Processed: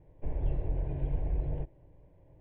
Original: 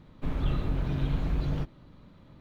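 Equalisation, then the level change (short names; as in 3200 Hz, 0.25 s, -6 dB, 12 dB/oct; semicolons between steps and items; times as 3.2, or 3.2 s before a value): Bessel low-pass 1400 Hz, order 8; fixed phaser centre 530 Hz, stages 4; -1.0 dB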